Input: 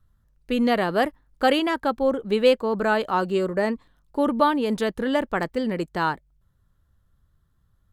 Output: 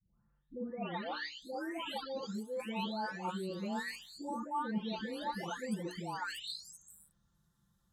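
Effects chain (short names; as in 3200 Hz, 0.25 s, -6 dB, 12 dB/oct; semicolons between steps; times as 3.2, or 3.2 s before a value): spectral delay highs late, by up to 0.934 s; HPF 50 Hz; notches 60/120/180/240/300/360/420/480 Hz; reverse; compressor 5:1, threshold -37 dBFS, peak gain reduction 20.5 dB; reverse; bell 6400 Hz +11.5 dB 1.4 oct; small resonant body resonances 210/890/3700 Hz, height 9 dB; gain -4 dB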